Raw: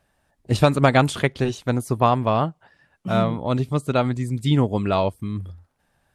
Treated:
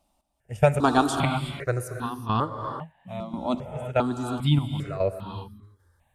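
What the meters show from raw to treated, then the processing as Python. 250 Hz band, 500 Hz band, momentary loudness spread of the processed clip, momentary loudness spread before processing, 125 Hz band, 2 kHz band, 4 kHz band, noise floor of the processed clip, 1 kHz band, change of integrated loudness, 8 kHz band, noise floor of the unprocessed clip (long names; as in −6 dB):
−5.0 dB, −5.0 dB, 16 LU, 11 LU, −5.5 dB, −5.5 dB, −4.0 dB, −71 dBFS, −4.0 dB, −4.5 dB, −2.5 dB, −69 dBFS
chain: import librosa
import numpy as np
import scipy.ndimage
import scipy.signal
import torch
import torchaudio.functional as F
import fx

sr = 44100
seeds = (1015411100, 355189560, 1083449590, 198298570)

y = fx.step_gate(x, sr, bpm=72, pattern='x..xxx..', floor_db=-12.0, edge_ms=4.5)
y = fx.rev_gated(y, sr, seeds[0], gate_ms=400, shape='rising', drr_db=5.5)
y = fx.phaser_held(y, sr, hz=2.5, low_hz=450.0, high_hz=2200.0)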